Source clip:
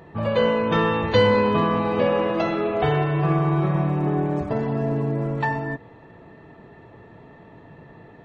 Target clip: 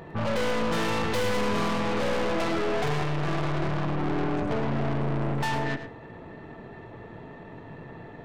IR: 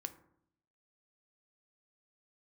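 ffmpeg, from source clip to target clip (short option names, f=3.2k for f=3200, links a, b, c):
-filter_complex "[0:a]aeval=exprs='(tanh(39.8*val(0)+0.65)-tanh(0.65))/39.8':c=same,asplit=2[a][b];[1:a]atrim=start_sample=2205,asetrate=32193,aresample=44100,adelay=105[c];[b][c]afir=irnorm=-1:irlink=0,volume=-9.5dB[d];[a][d]amix=inputs=2:normalize=0,volume=6dB"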